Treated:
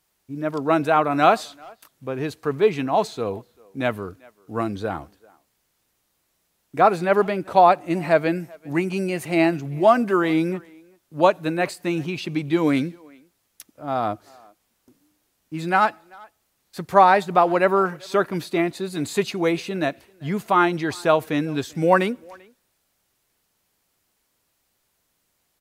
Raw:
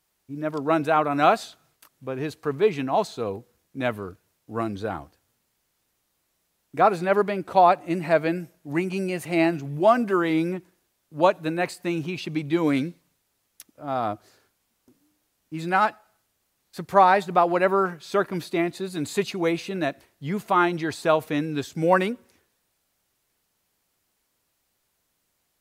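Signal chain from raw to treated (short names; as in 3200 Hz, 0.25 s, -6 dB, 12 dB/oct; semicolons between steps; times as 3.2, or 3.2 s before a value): speakerphone echo 0.39 s, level -25 dB; gain +2.5 dB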